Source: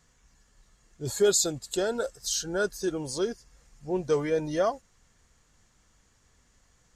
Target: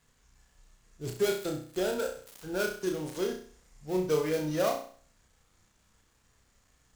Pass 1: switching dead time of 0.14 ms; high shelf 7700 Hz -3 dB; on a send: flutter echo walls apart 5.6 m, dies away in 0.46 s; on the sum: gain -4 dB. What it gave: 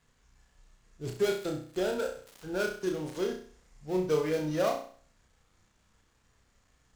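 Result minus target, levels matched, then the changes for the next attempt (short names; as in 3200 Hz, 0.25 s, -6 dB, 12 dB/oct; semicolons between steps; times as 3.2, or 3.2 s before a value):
8000 Hz band -4.0 dB
change: high shelf 7700 Hz +6 dB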